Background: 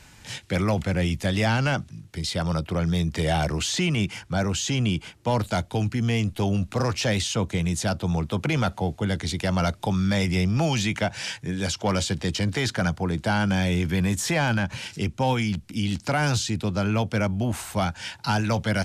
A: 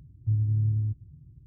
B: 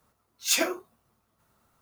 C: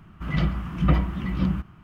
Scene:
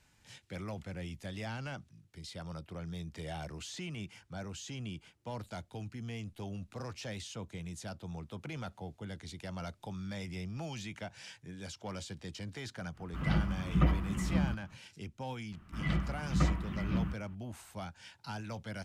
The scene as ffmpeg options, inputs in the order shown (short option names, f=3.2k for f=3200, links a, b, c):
-filter_complex "[3:a]asplit=2[a][b];[0:a]volume=-18dB[c];[b]equalizer=f=1.9k:t=o:w=0.77:g=3.5[d];[a]atrim=end=1.83,asetpts=PTS-STARTPTS,volume=-7dB,afade=t=in:d=0.05,afade=t=out:st=1.78:d=0.05,adelay=12930[e];[d]atrim=end=1.83,asetpts=PTS-STARTPTS,volume=-9dB,afade=t=in:d=0.004:c=hsin,afade=t=out:st=1.826:d=0.004:c=hsin,adelay=15520[f];[c][e][f]amix=inputs=3:normalize=0"